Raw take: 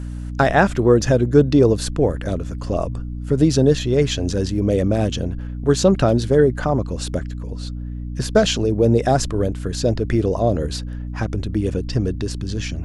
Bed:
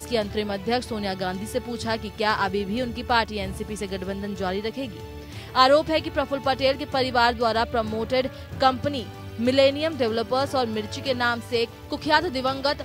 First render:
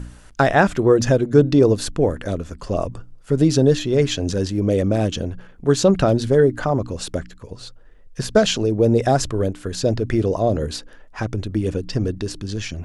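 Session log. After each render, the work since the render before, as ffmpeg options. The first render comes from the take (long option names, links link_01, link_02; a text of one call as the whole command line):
ffmpeg -i in.wav -af "bandreject=frequency=60:width_type=h:width=4,bandreject=frequency=120:width_type=h:width=4,bandreject=frequency=180:width_type=h:width=4,bandreject=frequency=240:width_type=h:width=4,bandreject=frequency=300:width_type=h:width=4" out.wav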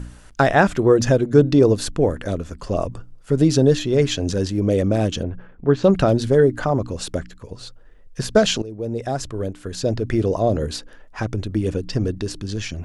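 ffmpeg -i in.wav -filter_complex "[0:a]asettb=1/sr,asplit=3[link_01][link_02][link_03];[link_01]atrim=end=5.234[link_04];[link_02]atrim=start=5.23:end=5.84,asetpts=PTS-STARTPTS,afade=type=in:duration=0.004:curve=qsin,afade=type=out:start_time=0.606:duration=0.004:curve=qsin,lowpass=2100[link_05];[link_03]atrim=start=5.836[link_06];[link_04][link_05]acrossfade=duration=0.004:curve1=hsin:curve2=qsin[link_07];[link_07][link_06]acrossfade=duration=0.004:curve1=qsin:curve2=hsin,asplit=2[link_08][link_09];[link_08]atrim=end=8.62,asetpts=PTS-STARTPTS,afade=type=out:start_time=8.616:duration=0.004:curve=hsin:silence=0.16788[link_10];[link_09]atrim=start=8.62,asetpts=PTS-STARTPTS,afade=type=in:duration=1.69:silence=0.16788[link_11];[link_10][link_11]concat=n=2:v=0:a=1" out.wav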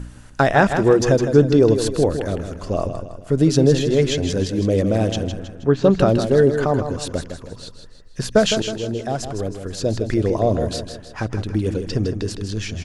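ffmpeg -i in.wav -af "aecho=1:1:159|318|477|636|795:0.376|0.169|0.0761|0.0342|0.0154" out.wav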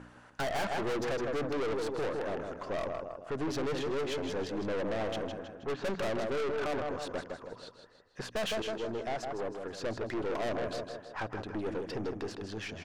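ffmpeg -i in.wav -af "bandpass=frequency=940:width_type=q:width=0.83:csg=0,aeval=exprs='(tanh(35.5*val(0)+0.4)-tanh(0.4))/35.5':channel_layout=same" out.wav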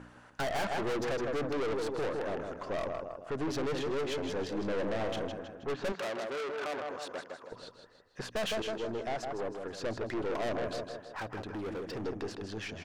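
ffmpeg -i in.wav -filter_complex "[0:a]asettb=1/sr,asplit=3[link_01][link_02][link_03];[link_01]atrim=end=4.464[link_04];[link_02]atrim=start=4.46:end=5.28,asetpts=PTS-STARTPTS,afade=type=in:duration=0.004:curve=qsin,afade=type=out:start_time=0.816:duration=0.004:curve=qsin,asplit=2[link_05][link_06];[link_06]adelay=35,volume=-11.5dB[link_07];[link_05][link_07]amix=inputs=2:normalize=0,atrim=end_sample=36162[link_08];[link_03]atrim=start=5.276[link_09];[link_04][link_08]acrossfade=duration=0.004:curve1=hsin:curve2=qsin[link_10];[link_10][link_09]acrossfade=duration=0.004:curve1=qsin:curve2=hsin,asettb=1/sr,asplit=3[link_11][link_12][link_13];[link_11]atrim=end=5.924[link_14];[link_12]atrim=start=5.92:end=7.52,asetpts=PTS-STARTPTS,afade=type=in:duration=0.004:curve=qsin,afade=type=out:start_time=1.596:duration=0.004:curve=qsin,highpass=frequency=570:poles=1[link_15];[link_13]atrim=start=7.516[link_16];[link_14][link_15]acrossfade=duration=0.004:curve1=hsin:curve2=qsin[link_17];[link_17][link_16]acrossfade=duration=0.004:curve1=qsin:curve2=hsin,asettb=1/sr,asplit=3[link_18][link_19][link_20];[link_18]atrim=end=11.124[link_21];[link_19]atrim=start=11.12:end=12.05,asetpts=PTS-STARTPTS,afade=type=in:duration=0.004:curve=qsin,afade=type=out:start_time=0.926:duration=0.004:curve=qsin,asoftclip=type=hard:threshold=-35dB[link_22];[link_20]atrim=start=12.046[link_23];[link_21][link_22]acrossfade=duration=0.004:curve1=hsin:curve2=qsin[link_24];[link_24][link_23]acrossfade=duration=0.004:curve1=qsin:curve2=hsin" out.wav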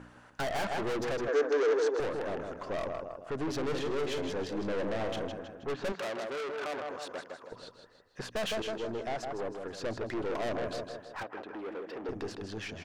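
ffmpeg -i in.wav -filter_complex "[0:a]asettb=1/sr,asplit=3[link_01][link_02][link_03];[link_01]atrim=end=1.284[link_04];[link_02]atrim=start=1.28:end=2,asetpts=PTS-STARTPTS,afade=type=in:duration=0.004:curve=qsin,afade=type=out:start_time=0.716:duration=0.004:curve=qsin,highpass=frequency=300:width=0.5412,highpass=frequency=300:width=1.3066,equalizer=frequency=440:width_type=q:width=4:gain=9,equalizer=frequency=1600:width_type=q:width=4:gain=9,equalizer=frequency=6200:width_type=q:width=4:gain=8,lowpass=frequency=7800:width=0.5412,lowpass=frequency=7800:width=1.3066[link_05];[link_03]atrim=start=1.996[link_06];[link_04][link_05]acrossfade=duration=0.004:curve1=hsin:curve2=qsin[link_07];[link_07][link_06]acrossfade=duration=0.004:curve1=qsin:curve2=hsin,asettb=1/sr,asplit=3[link_08][link_09][link_10];[link_08]atrim=end=3.624[link_11];[link_09]atrim=start=3.62:end=4.31,asetpts=PTS-STARTPTS,afade=type=in:duration=0.004:curve=qsin,afade=type=out:start_time=0.686:duration=0.004:curve=qsin,asplit=2[link_12][link_13];[link_13]adelay=48,volume=-9dB[link_14];[link_12][link_14]amix=inputs=2:normalize=0,atrim=end_sample=30429[link_15];[link_10]atrim=start=4.306[link_16];[link_11][link_15]acrossfade=duration=0.004:curve1=hsin:curve2=qsin[link_17];[link_17][link_16]acrossfade=duration=0.004:curve1=qsin:curve2=hsin,asettb=1/sr,asplit=3[link_18][link_19][link_20];[link_18]atrim=end=11.234[link_21];[link_19]atrim=start=11.23:end=12.09,asetpts=PTS-STARTPTS,afade=type=in:duration=0.004:curve=qsin,afade=type=out:start_time=0.856:duration=0.004:curve=qsin,acrossover=split=250 3500:gain=0.0708 1 0.178[link_22][link_23][link_24];[link_22][link_23][link_24]amix=inputs=3:normalize=0[link_25];[link_20]atrim=start=12.086[link_26];[link_21][link_25]acrossfade=duration=0.004:curve1=hsin:curve2=qsin[link_27];[link_27][link_26]acrossfade=duration=0.004:curve1=qsin:curve2=hsin" out.wav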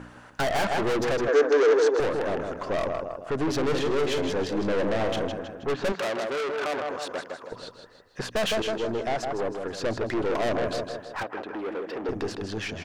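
ffmpeg -i in.wav -af "volume=7.5dB" out.wav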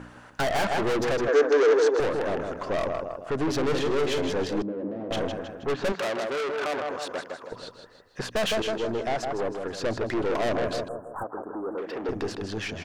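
ffmpeg -i in.wav -filter_complex "[0:a]asettb=1/sr,asplit=3[link_01][link_02][link_03];[link_01]atrim=end=4.624[link_04];[link_02]atrim=start=4.62:end=5.11,asetpts=PTS-STARTPTS,afade=type=in:duration=0.004:curve=qsin,afade=type=out:start_time=0.486:duration=0.004:curve=qsin,bandpass=frequency=270:width_type=q:width=2[link_05];[link_03]atrim=start=5.106[link_06];[link_04][link_05]acrossfade=duration=0.004:curve1=hsin:curve2=qsin[link_07];[link_07][link_06]acrossfade=duration=0.004:curve1=qsin:curve2=hsin,asettb=1/sr,asplit=3[link_08][link_09][link_10];[link_08]atrim=end=10.884[link_11];[link_09]atrim=start=10.88:end=11.78,asetpts=PTS-STARTPTS,afade=type=in:duration=0.004:curve=qsin,afade=type=out:start_time=0.896:duration=0.004:curve=qsin,asuperstop=centerf=3500:order=12:qfactor=0.52[link_12];[link_10]atrim=start=11.776[link_13];[link_11][link_12]acrossfade=duration=0.004:curve1=hsin:curve2=qsin[link_14];[link_14][link_13]acrossfade=duration=0.004:curve1=qsin:curve2=hsin" out.wav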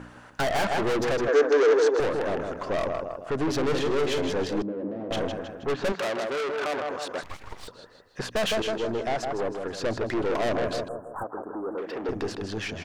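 ffmpeg -i in.wav -filter_complex "[0:a]asettb=1/sr,asplit=3[link_01][link_02][link_03];[link_01]atrim=end=7.234[link_04];[link_02]atrim=start=7.23:end=7.68,asetpts=PTS-STARTPTS,afade=type=in:duration=0.004:curve=qsin,afade=type=out:start_time=0.446:duration=0.004:curve=qsin,aeval=exprs='abs(val(0))':channel_layout=same[link_05];[link_03]atrim=start=7.676[link_06];[link_04][link_05]acrossfade=duration=0.004:curve1=hsin:curve2=qsin[link_07];[link_07][link_06]acrossfade=duration=0.004:curve1=qsin:curve2=hsin" out.wav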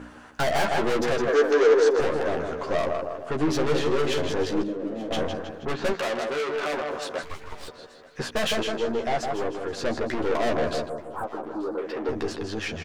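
ffmpeg -i in.wav -filter_complex "[0:a]asplit=2[link_01][link_02];[link_02]adelay=13,volume=-4dB[link_03];[link_01][link_03]amix=inputs=2:normalize=0,aecho=1:1:881|1762|2643:0.0891|0.0303|0.0103" out.wav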